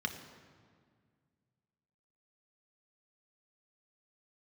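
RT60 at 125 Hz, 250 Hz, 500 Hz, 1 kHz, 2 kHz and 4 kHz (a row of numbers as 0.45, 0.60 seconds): 2.8, 2.5, 2.0, 1.8, 1.6, 1.3 seconds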